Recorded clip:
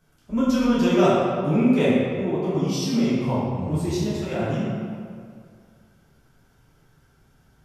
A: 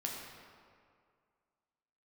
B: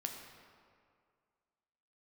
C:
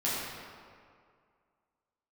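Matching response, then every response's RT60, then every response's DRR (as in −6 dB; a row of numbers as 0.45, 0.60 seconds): C; 2.1, 2.1, 2.2 seconds; −2.0, 2.5, −9.5 decibels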